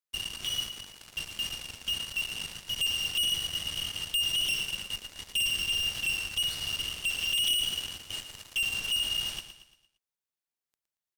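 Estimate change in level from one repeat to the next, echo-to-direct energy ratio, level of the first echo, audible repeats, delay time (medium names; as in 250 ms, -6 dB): -7.5 dB, -9.0 dB, -10.0 dB, 4, 115 ms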